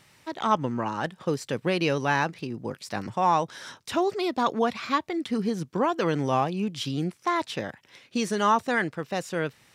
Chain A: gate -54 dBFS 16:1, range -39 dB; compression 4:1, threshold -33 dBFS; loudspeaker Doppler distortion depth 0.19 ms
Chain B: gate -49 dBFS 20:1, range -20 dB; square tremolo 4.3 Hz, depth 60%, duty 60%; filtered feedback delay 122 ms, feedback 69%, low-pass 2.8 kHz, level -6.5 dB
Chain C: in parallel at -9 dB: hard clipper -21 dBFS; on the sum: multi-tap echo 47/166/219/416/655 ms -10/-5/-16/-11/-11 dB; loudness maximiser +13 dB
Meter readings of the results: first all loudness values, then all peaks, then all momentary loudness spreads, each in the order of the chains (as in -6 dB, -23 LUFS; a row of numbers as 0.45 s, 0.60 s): -36.5 LUFS, -27.5 LUFS, -11.5 LUFS; -19.0 dBFS, -8.5 dBFS, -1.0 dBFS; 5 LU, 8 LU, 5 LU